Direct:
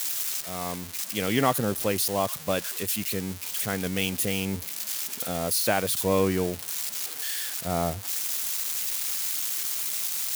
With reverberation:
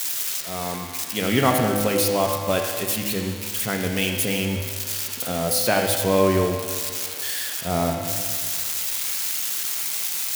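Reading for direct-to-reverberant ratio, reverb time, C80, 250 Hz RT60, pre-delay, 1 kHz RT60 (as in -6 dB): 2.0 dB, 1.9 s, 5.5 dB, 1.9 s, 4 ms, 1.9 s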